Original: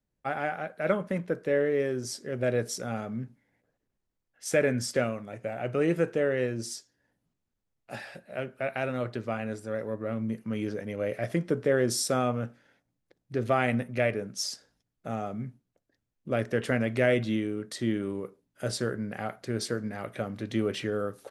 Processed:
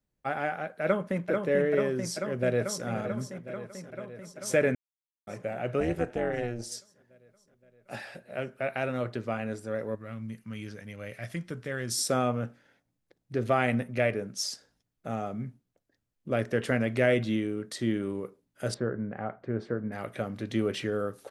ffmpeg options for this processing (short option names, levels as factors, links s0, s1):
-filter_complex "[0:a]asplit=2[s0][s1];[s1]afade=t=in:st=0.84:d=0.01,afade=t=out:st=1.3:d=0.01,aecho=0:1:440|880|1320|1760|2200|2640|3080|3520|3960|4400|4840|5280:0.630957|0.504766|0.403813|0.32305|0.25844|0.206752|0.165402|0.132321|0.105857|0.0846857|0.0677485|0.0541988[s2];[s0][s2]amix=inputs=2:normalize=0,asplit=2[s3][s4];[s4]afade=t=in:st=2.27:d=0.01,afade=t=out:st=2.86:d=0.01,aecho=0:1:520|1040|1560|2080|2600|3120|3640|4160|4680|5200|5720|6240:0.237137|0.177853|0.13339|0.100042|0.0750317|0.0562738|0.0422054|0.031654|0.0237405|0.0178054|0.013354|0.0100155[s5];[s3][s5]amix=inputs=2:normalize=0,asettb=1/sr,asplit=3[s6][s7][s8];[s6]atrim=end=5.804[s9];[s7]atrim=start=5.8:end=6.72,asetpts=PTS-STARTPTS,afade=t=in:d=0.004:c=qsin,afade=t=out:st=0.916:d=0.004:c=qsin,tremolo=f=240:d=0.824[s10];[s8]atrim=start=6.716[s11];[s9][s10]acrossfade=d=0.004:c1=hsin:c2=qsin[s12];[s12][s11]acrossfade=d=0.004:c1=qsin:c2=hsin,asettb=1/sr,asplit=3[s13][s14][s15];[s13]atrim=end=9.954[s16];[s14]atrim=start=9.95:end=11.98,asetpts=PTS-STARTPTS,afade=t=in:d=0.004:c=qsin,afade=t=out:st=2.026:d=0.004:c=qsin,equalizer=f=440:w=0.55:g=-13.5[s17];[s15]atrim=start=11.976[s18];[s16][s17]acrossfade=d=0.004:c1=hsin:c2=qsin[s19];[s19][s18]acrossfade=d=0.004:c1=qsin:c2=hsin,asettb=1/sr,asplit=3[s20][s21][s22];[s20]atrim=end=18.744[s23];[s21]atrim=start=18.74:end=19.92,asetpts=PTS-STARTPTS,afade=t=in:d=0.004:c=qsin,afade=t=out:st=1.176:d=0.004:c=qsin,lowpass=1400[s24];[s22]atrim=start=19.916[s25];[s23][s24]acrossfade=d=0.004:c1=hsin:c2=qsin[s26];[s26][s25]acrossfade=d=0.004:c1=qsin:c2=hsin,asplit=3[s27][s28][s29];[s27]atrim=end=4.75,asetpts=PTS-STARTPTS,afade=t=out:st=4.746:d=0.004:c=hsin[s30];[s28]atrim=start=4.75:end=5.27,asetpts=PTS-STARTPTS,volume=0[s31];[s29]atrim=start=5.27,asetpts=PTS-STARTPTS,afade=t=in:d=0.004:c=hsin[s32];[s30][s31][s32]concat=n=3:v=0:a=1"